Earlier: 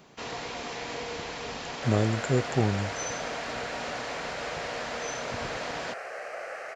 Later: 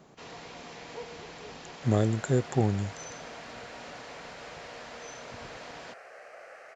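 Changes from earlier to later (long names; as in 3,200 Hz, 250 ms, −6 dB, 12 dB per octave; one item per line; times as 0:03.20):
first sound −9.0 dB
second sound −10.5 dB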